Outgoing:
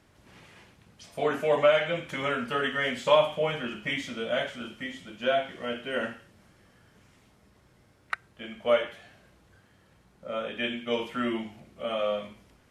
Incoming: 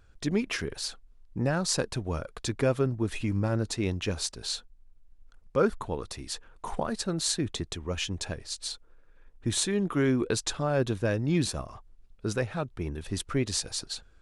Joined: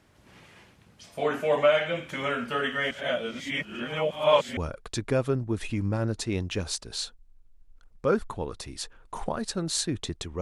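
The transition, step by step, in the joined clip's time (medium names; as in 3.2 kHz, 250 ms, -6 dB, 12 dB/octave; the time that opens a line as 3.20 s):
outgoing
2.91–4.57 s: reverse
4.57 s: go over to incoming from 2.08 s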